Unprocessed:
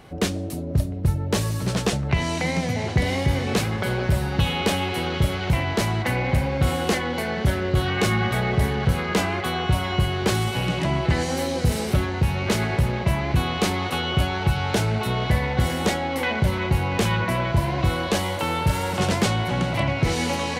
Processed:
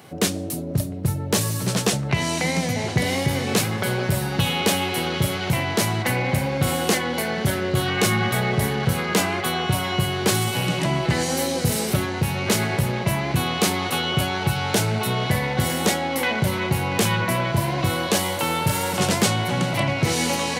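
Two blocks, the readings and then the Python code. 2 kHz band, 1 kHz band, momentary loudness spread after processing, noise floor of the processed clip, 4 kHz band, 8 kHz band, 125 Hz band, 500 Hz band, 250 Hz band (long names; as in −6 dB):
+2.0 dB, +1.0 dB, 3 LU, −28 dBFS, +3.5 dB, +8.0 dB, −1.0 dB, +1.0 dB, +1.0 dB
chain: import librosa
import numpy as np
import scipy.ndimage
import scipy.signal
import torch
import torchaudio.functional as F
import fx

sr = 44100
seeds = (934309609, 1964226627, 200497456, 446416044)

y = scipy.signal.sosfilt(scipy.signal.butter(4, 100.0, 'highpass', fs=sr, output='sos'), x)
y = fx.high_shelf(y, sr, hz=6500.0, db=11.5)
y = y * librosa.db_to_amplitude(1.0)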